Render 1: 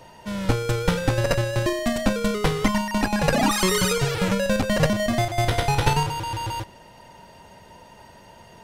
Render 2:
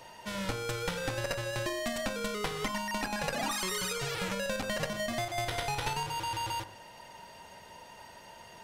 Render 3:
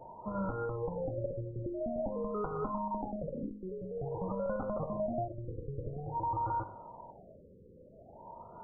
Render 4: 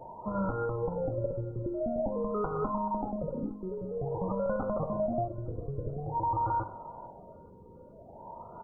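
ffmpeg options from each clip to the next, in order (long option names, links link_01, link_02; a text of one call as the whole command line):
ffmpeg -i in.wav -af "lowshelf=frequency=460:gain=-9.5,bandreject=frequency=51.06:width_type=h:width=4,bandreject=frequency=102.12:width_type=h:width=4,bandreject=frequency=153.18:width_type=h:width=4,bandreject=frequency=204.24:width_type=h:width=4,bandreject=frequency=255.3:width_type=h:width=4,bandreject=frequency=306.36:width_type=h:width=4,bandreject=frequency=357.42:width_type=h:width=4,bandreject=frequency=408.48:width_type=h:width=4,bandreject=frequency=459.54:width_type=h:width=4,bandreject=frequency=510.6:width_type=h:width=4,bandreject=frequency=561.66:width_type=h:width=4,bandreject=frequency=612.72:width_type=h:width=4,bandreject=frequency=663.78:width_type=h:width=4,bandreject=frequency=714.84:width_type=h:width=4,bandreject=frequency=765.9:width_type=h:width=4,bandreject=frequency=816.96:width_type=h:width=4,bandreject=frequency=868.02:width_type=h:width=4,bandreject=frequency=919.08:width_type=h:width=4,bandreject=frequency=970.14:width_type=h:width=4,bandreject=frequency=1021.2:width_type=h:width=4,bandreject=frequency=1072.26:width_type=h:width=4,bandreject=frequency=1123.32:width_type=h:width=4,bandreject=frequency=1174.38:width_type=h:width=4,bandreject=frequency=1225.44:width_type=h:width=4,bandreject=frequency=1276.5:width_type=h:width=4,bandreject=frequency=1327.56:width_type=h:width=4,bandreject=frequency=1378.62:width_type=h:width=4,bandreject=frequency=1429.68:width_type=h:width=4,bandreject=frequency=1480.74:width_type=h:width=4,bandreject=frequency=1531.8:width_type=h:width=4,bandreject=frequency=1582.86:width_type=h:width=4,bandreject=frequency=1633.92:width_type=h:width=4,acompressor=threshold=-31dB:ratio=4" out.wav
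ffmpeg -i in.wav -af "alimiter=limit=-23.5dB:level=0:latency=1:release=132,aeval=exprs='val(0)+0.001*sin(2*PI*940*n/s)':channel_layout=same,afftfilt=real='re*lt(b*sr/1024,540*pow(1500/540,0.5+0.5*sin(2*PI*0.49*pts/sr)))':imag='im*lt(b*sr/1024,540*pow(1500/540,0.5+0.5*sin(2*PI*0.49*pts/sr)))':win_size=1024:overlap=0.75,volume=2.5dB" out.wav
ffmpeg -i in.wav -af "aecho=1:1:431|862|1293|1724:0.0668|0.0374|0.021|0.0117,volume=4dB" out.wav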